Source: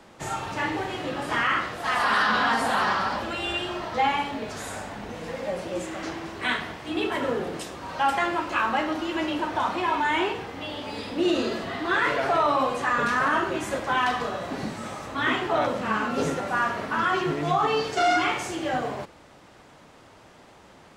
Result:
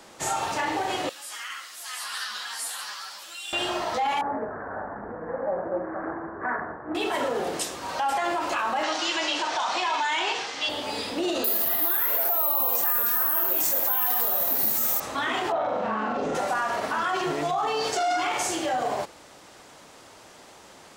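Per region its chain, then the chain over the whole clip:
1.09–3.53 s: differentiator + upward compressor, threshold -39 dBFS + three-phase chorus
4.21–6.95 s: Chebyshev low-pass 1.7 kHz, order 6 + loudspeaker Doppler distortion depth 0.13 ms
8.83–10.69 s: low-pass 6.4 kHz 24 dB/octave + tilt EQ +4 dB/octave
11.44–15.00 s: treble shelf 5 kHz +8 dB + careless resampling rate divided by 3×, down none, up zero stuff
15.52–16.35 s: tape spacing loss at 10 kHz 27 dB + flutter echo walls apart 7.2 m, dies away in 0.7 s
whole clip: dynamic bell 740 Hz, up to +7 dB, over -39 dBFS, Q 1.7; peak limiter -20.5 dBFS; tone controls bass -7 dB, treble +9 dB; trim +2 dB

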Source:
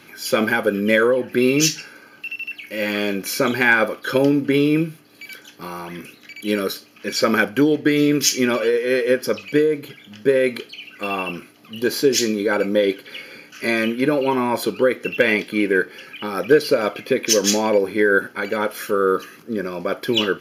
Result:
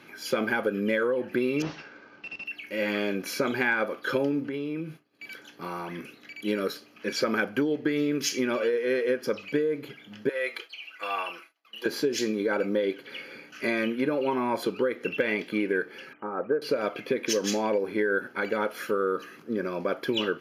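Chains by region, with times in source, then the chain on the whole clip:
1.62–2.46 s: CVSD coder 32 kbps + treble shelf 3.3 kHz -9.5 dB
4.43–5.31 s: treble shelf 8.3 kHz -4 dB + compression 5:1, threshold -26 dBFS + expander -43 dBFS
10.29–11.86 s: high-pass 820 Hz + expander -44 dBFS + comb 6.1 ms, depth 50%
16.13–16.62 s: low-pass 1.3 kHz 24 dB/octave + bass shelf 350 Hz -9 dB
whole clip: treble shelf 4.2 kHz -10.5 dB; compression 4:1, threshold -20 dBFS; bass shelf 86 Hz -11.5 dB; trim -2.5 dB

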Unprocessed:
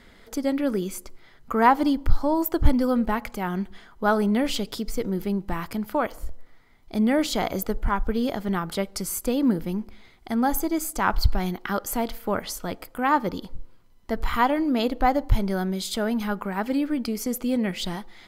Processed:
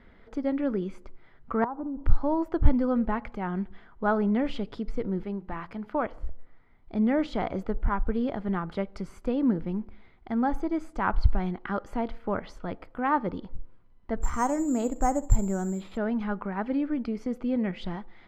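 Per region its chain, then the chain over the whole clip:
1.64–2.04 s: steep low-pass 1.4 kHz 48 dB/octave + compression 8:1, threshold -27 dBFS
5.23–5.94 s: bass shelf 290 Hz -7.5 dB + hum notches 60/120/180/240/300/360/420 Hz
14.22–15.97 s: low-pass 1.2 kHz 6 dB/octave + flutter echo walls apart 10.6 m, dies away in 0.21 s + careless resampling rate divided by 6×, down none, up zero stuff
whole clip: low-pass 2.1 kHz 12 dB/octave; bass shelf 170 Hz +3.5 dB; trim -4 dB

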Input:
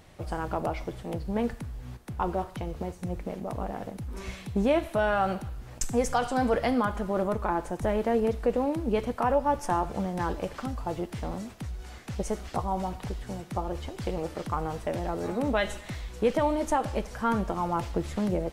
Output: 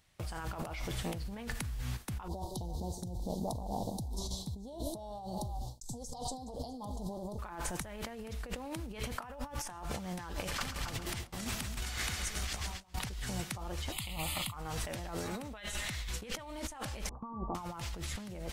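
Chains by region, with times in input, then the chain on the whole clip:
2.28–7.39 s: elliptic band-stop 890–3900 Hz + treble shelf 7.2 kHz -6 dB + repeats whose band climbs or falls 163 ms, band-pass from 350 Hz, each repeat 1.4 oct, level -11 dB
10.47–12.99 s: compressor with a negative ratio -43 dBFS + multi-head delay 136 ms, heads first and second, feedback 42%, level -9.5 dB
13.92–14.54 s: treble shelf 2.2 kHz +10.5 dB + static phaser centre 1.6 kHz, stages 6 + tape noise reduction on one side only decoder only
17.09–17.55 s: rippled Chebyshev low-pass 1.2 kHz, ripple 9 dB + upward compressor, threshold -54 dBFS + doubling 13 ms -11 dB
whole clip: gate with hold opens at -33 dBFS; amplifier tone stack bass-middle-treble 5-5-5; compressor with a negative ratio -53 dBFS, ratio -1; trim +13 dB

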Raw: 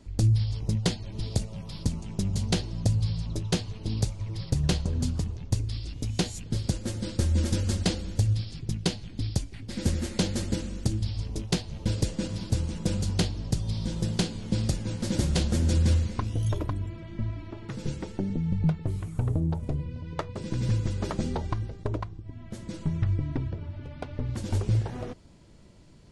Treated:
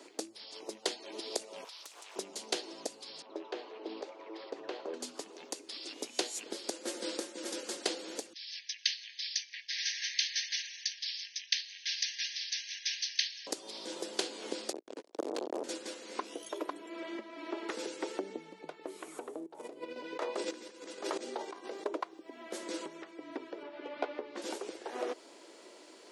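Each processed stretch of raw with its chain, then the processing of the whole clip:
1.64–2.16 s: high-pass 1.1 kHz + compression, threshold -54 dBFS + loudspeaker Doppler distortion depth 0.58 ms
3.22–4.94 s: high-pass 340 Hz + compression 5:1, threshold -36 dBFS + tape spacing loss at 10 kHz 39 dB
8.33–13.47 s: brick-wall FIR band-pass 1.6–6.4 kHz + transformer saturation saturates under 1.2 kHz
14.72–15.64 s: tilt EQ -2 dB/octave + hard clipper -16.5 dBFS + transformer saturation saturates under 320 Hz
19.46–21.86 s: de-hum 91.05 Hz, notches 12 + compressor with a negative ratio -37 dBFS
23.63–24.42 s: distance through air 140 m + doubling 14 ms -4 dB
whole clip: compression 5:1, threshold -35 dBFS; steep high-pass 330 Hz 36 dB/octave; trim +8 dB

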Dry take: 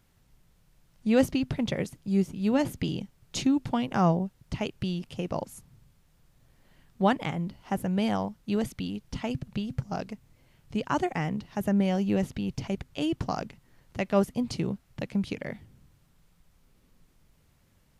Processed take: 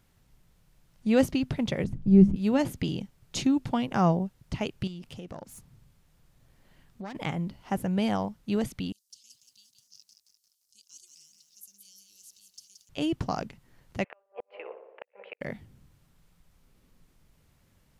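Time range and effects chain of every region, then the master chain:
1.84–2.36 s: tilt EQ -4.5 dB/octave + hum notches 50/100/150/200/250 Hz
4.87–7.15 s: self-modulated delay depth 0.23 ms + compression 4:1, threshold -38 dBFS
8.92–12.89 s: inverse Chebyshev high-pass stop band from 2 kHz, stop band 50 dB + bit-crushed delay 174 ms, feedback 55%, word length 12-bit, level -6 dB
14.04–15.41 s: Chebyshev band-pass 470–2700 Hz, order 4 + tape echo 61 ms, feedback 82%, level -7.5 dB, low-pass 1.4 kHz + inverted gate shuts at -26 dBFS, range -41 dB
whole clip: none

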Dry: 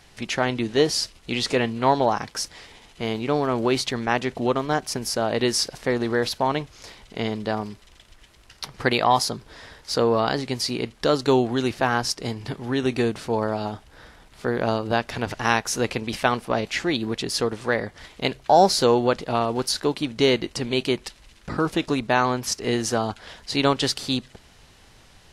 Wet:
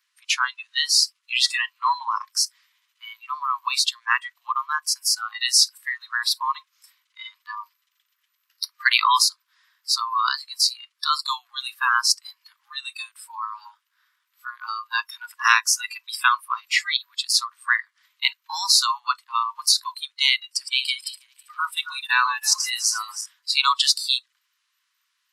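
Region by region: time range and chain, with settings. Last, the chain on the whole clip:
20.46–23.26 s: backward echo that repeats 162 ms, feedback 70%, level -7 dB + peaking EQ 1.2 kHz -4.5 dB 0.31 oct
whole clip: steep high-pass 1 kHz 96 dB/octave; spectral noise reduction 25 dB; trim +7.5 dB

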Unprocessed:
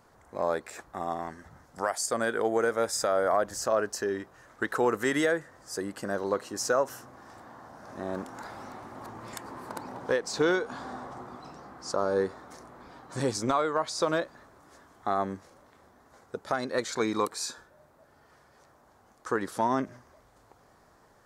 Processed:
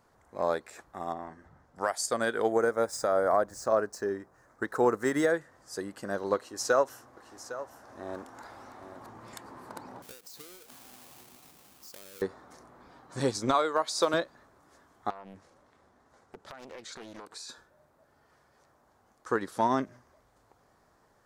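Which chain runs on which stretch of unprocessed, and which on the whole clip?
1.12–1.81 s: treble shelf 3.1 kHz -11 dB + doubling 44 ms -11.5 dB
2.52–5.34 s: median filter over 3 samples + peaking EQ 3.1 kHz -12 dB 1 oct
6.36–8.98 s: peaking EQ 170 Hz -9.5 dB 0.6 oct + delay 807 ms -9.5 dB
10.02–12.22 s: square wave that keeps the level + pre-emphasis filter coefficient 0.8 + compression, threshold -38 dBFS
13.54–14.14 s: high-pass 240 Hz + treble shelf 8.5 kHz +10 dB
15.10–17.49 s: low-pass 11 kHz + compression 10:1, threshold -35 dBFS + loudspeaker Doppler distortion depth 0.76 ms
whole clip: dynamic bell 3.9 kHz, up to +5 dB, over -52 dBFS, Q 3; upward expansion 1.5:1, over -37 dBFS; trim +2 dB

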